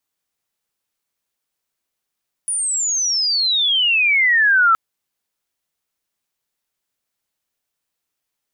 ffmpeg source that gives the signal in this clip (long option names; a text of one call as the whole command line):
ffmpeg -f lavfi -i "aevalsrc='pow(10,(-18.5+8.5*t/2.27)/20)*sin(2*PI*9800*2.27/log(1300/9800)*(exp(log(1300/9800)*t/2.27)-1))':duration=2.27:sample_rate=44100" out.wav